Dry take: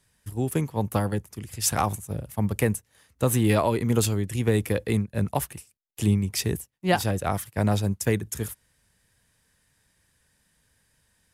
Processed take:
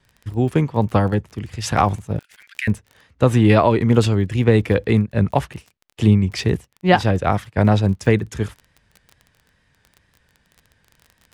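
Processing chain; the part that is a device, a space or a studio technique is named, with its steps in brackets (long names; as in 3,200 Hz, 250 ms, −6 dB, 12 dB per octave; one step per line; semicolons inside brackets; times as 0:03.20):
0:02.19–0:02.68: Chebyshev high-pass filter 1,500 Hz, order 6
lo-fi chain (low-pass filter 3,600 Hz 12 dB per octave; tape wow and flutter; surface crackle 24 per second −40 dBFS)
level +8 dB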